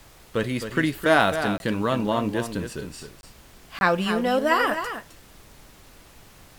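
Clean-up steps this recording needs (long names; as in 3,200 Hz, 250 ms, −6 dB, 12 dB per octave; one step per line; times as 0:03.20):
repair the gap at 0:01.58/0:03.21/0:03.79, 21 ms
noise reduction from a noise print 19 dB
echo removal 263 ms −9 dB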